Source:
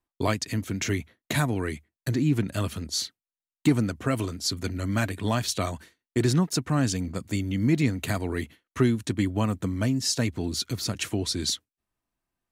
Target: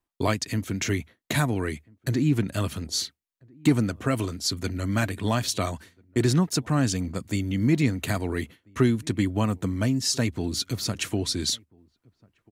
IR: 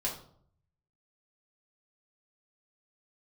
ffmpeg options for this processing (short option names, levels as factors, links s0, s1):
-filter_complex "[0:a]asplit=2[s0][s1];[s1]adelay=1341,volume=0.0398,highshelf=f=4000:g=-30.2[s2];[s0][s2]amix=inputs=2:normalize=0,volume=1.12"